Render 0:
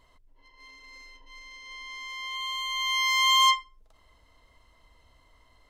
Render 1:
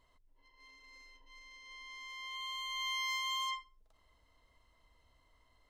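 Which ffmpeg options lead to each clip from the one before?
ffmpeg -i in.wav -af "alimiter=limit=-21dB:level=0:latency=1:release=43,volume=-9dB" out.wav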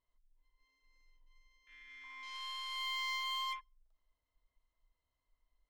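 ffmpeg -i in.wav -af "afwtdn=0.00447,aeval=exprs='0.0355*(cos(1*acos(clip(val(0)/0.0355,-1,1)))-cos(1*PI/2))+0.00178*(cos(8*acos(clip(val(0)/0.0355,-1,1)))-cos(8*PI/2))':channel_layout=same,volume=-1.5dB" out.wav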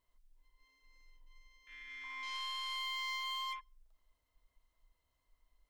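ffmpeg -i in.wav -af "acompressor=threshold=-43dB:ratio=6,volume=5.5dB" out.wav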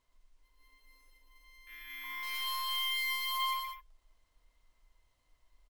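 ffmpeg -i in.wav -filter_complex "[0:a]acrusher=samples=3:mix=1:aa=0.000001,asplit=2[link_01][link_02];[link_02]aecho=0:1:119.5|204.1:0.631|0.355[link_03];[link_01][link_03]amix=inputs=2:normalize=0,volume=3.5dB" out.wav

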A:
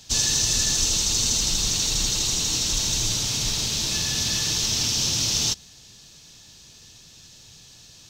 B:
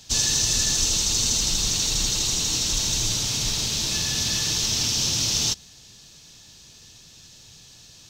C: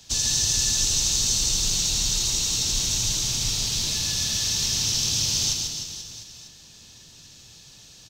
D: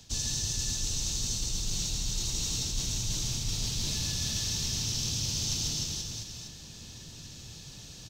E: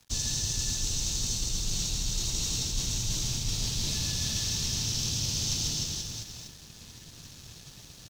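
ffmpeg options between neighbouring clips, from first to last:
ffmpeg -i in.wav -af anull out.wav
ffmpeg -i in.wav -filter_complex "[0:a]acrossover=split=150|3000[link_01][link_02][link_03];[link_02]acompressor=threshold=-37dB:ratio=6[link_04];[link_01][link_04][link_03]amix=inputs=3:normalize=0,aecho=1:1:140|301|486.2|699.1|943.9:0.631|0.398|0.251|0.158|0.1,volume=-2dB" out.wav
ffmpeg -i in.wav -af "lowshelf=frequency=420:gain=8.5,areverse,acompressor=threshold=-28dB:ratio=10,areverse" out.wav
ffmpeg -i in.wav -af "aeval=exprs='sgn(val(0))*max(abs(val(0))-0.00282,0)':channel_layout=same,volume=2dB" out.wav

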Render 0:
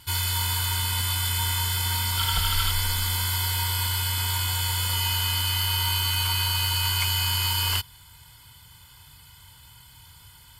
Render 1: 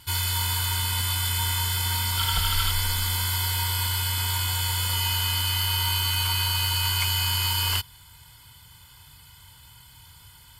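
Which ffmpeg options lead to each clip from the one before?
ffmpeg -i in.wav -af anull out.wav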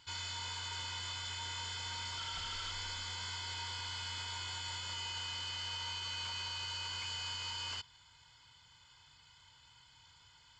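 ffmpeg -i in.wav -af "lowshelf=frequency=230:gain=-11.5,alimiter=limit=-18dB:level=0:latency=1:release=46,aresample=16000,asoftclip=type=tanh:threshold=-28.5dB,aresample=44100,volume=-8.5dB" out.wav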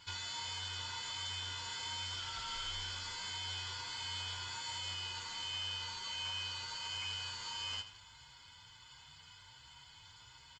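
ffmpeg -i in.wav -filter_complex "[0:a]acompressor=threshold=-45dB:ratio=6,asplit=2[link_01][link_02];[link_02]aecho=0:1:83|166|249|332|415:0.251|0.121|0.0579|0.0278|0.0133[link_03];[link_01][link_03]amix=inputs=2:normalize=0,asplit=2[link_04][link_05];[link_05]adelay=8.7,afreqshift=1.4[link_06];[link_04][link_06]amix=inputs=2:normalize=1,volume=7.5dB" out.wav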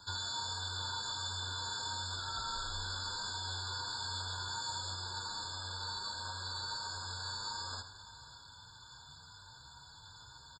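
ffmpeg -i in.wav -filter_complex "[0:a]aecho=1:1:549:0.126,acrossover=split=160|570|2200[link_01][link_02][link_03][link_04];[link_01]acrusher=samples=9:mix=1:aa=0.000001:lfo=1:lforange=5.4:lforate=0.33[link_05];[link_05][link_02][link_03][link_04]amix=inputs=4:normalize=0,afftfilt=real='re*eq(mod(floor(b*sr/1024/1700),2),0)':imag='im*eq(mod(floor(b*sr/1024/1700),2),0)':win_size=1024:overlap=0.75,volume=5dB" out.wav

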